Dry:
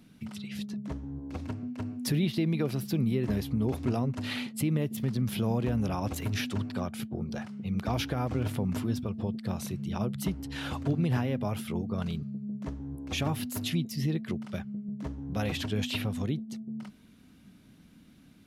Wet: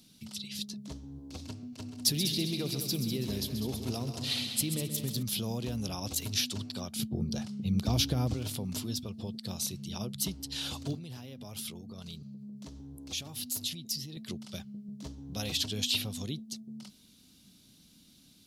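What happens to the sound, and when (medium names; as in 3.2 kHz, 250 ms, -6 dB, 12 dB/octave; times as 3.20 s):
1.59–5.23 s: multi-head delay 66 ms, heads second and third, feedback 45%, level -9.5 dB
6.96–8.34 s: bass shelf 410 Hz +10.5 dB
10.96–14.17 s: compression 5:1, threshold -35 dBFS
whole clip: resonant high shelf 2.8 kHz +14 dB, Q 1.5; trim -6.5 dB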